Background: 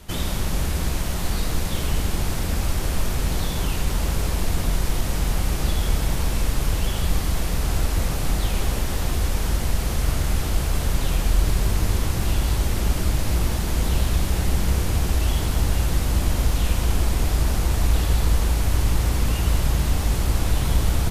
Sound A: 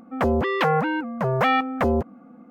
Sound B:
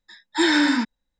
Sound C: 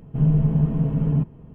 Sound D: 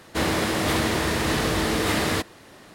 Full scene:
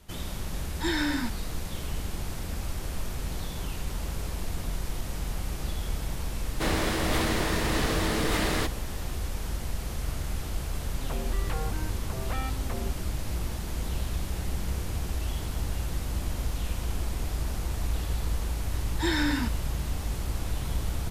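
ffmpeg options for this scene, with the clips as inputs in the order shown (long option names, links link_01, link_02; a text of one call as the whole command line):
ffmpeg -i bed.wav -i cue0.wav -i cue1.wav -i cue2.wav -i cue3.wav -filter_complex "[2:a]asplit=2[link_01][link_02];[0:a]volume=-10dB[link_03];[link_01]atrim=end=1.19,asetpts=PTS-STARTPTS,volume=-10dB,afade=type=in:duration=0.004:curve=hsin,afade=type=out:start_time=1.186:duration=0.004:curve=hsin,adelay=450[link_04];[4:a]atrim=end=2.74,asetpts=PTS-STARTPTS,volume=-4.5dB,afade=type=in:duration=0.004:curve=hsin,afade=type=out:start_time=2.736:duration=0.004:curve=hsin,adelay=6450[link_05];[1:a]atrim=end=2.5,asetpts=PTS-STARTPTS,volume=-17.5dB,afade=type=in:duration=0.004:curve=hsin,afade=type=out:start_time=2.496:duration=0.004:curve=hsin,adelay=10890[link_06];[link_02]atrim=end=1.19,asetpts=PTS-STARTPTS,volume=-9dB,afade=type=in:duration=0.004:curve=hsin,afade=type=out:start_time=1.186:duration=0.004:curve=hsin,adelay=18640[link_07];[link_03][link_04][link_05][link_06][link_07]amix=inputs=5:normalize=0" out.wav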